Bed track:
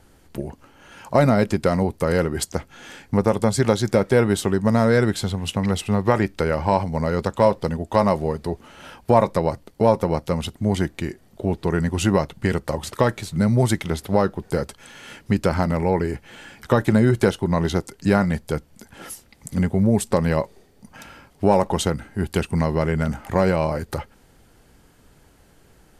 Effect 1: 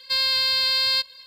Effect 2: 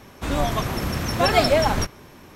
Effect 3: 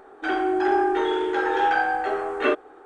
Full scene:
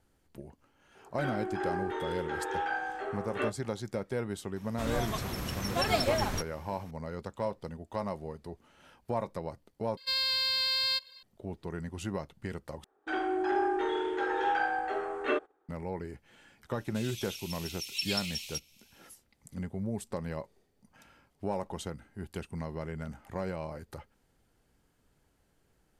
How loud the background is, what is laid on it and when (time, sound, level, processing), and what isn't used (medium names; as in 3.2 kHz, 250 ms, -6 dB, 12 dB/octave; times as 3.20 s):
bed track -17 dB
0.95 s: add 3 -11.5 dB + doubling 23 ms -11.5 dB
4.56 s: add 2 -11 dB + treble shelf 3.9 kHz +4.5 dB
9.97 s: replace with 1 -8 dB
12.84 s: replace with 3 -8 dB + gate -44 dBFS, range -17 dB
16.73 s: add 2 -7 dB + elliptic high-pass 2.5 kHz